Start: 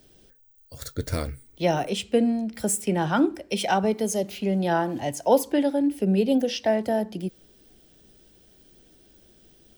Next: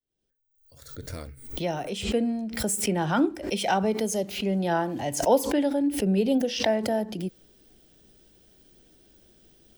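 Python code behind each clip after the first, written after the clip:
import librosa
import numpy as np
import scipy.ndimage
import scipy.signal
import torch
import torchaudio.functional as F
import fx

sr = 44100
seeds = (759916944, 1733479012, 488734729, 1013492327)

y = fx.fade_in_head(x, sr, length_s=2.92)
y = fx.pre_swell(y, sr, db_per_s=85.0)
y = F.gain(torch.from_numpy(y), -2.0).numpy()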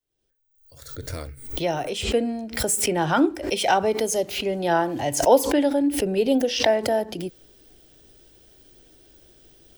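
y = fx.peak_eq(x, sr, hz=200.0, db=-12.5, octaves=0.38)
y = F.gain(torch.from_numpy(y), 5.0).numpy()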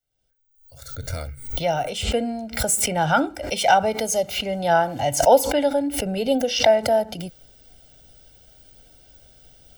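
y = x + 0.72 * np.pad(x, (int(1.4 * sr / 1000.0), 0))[:len(x)]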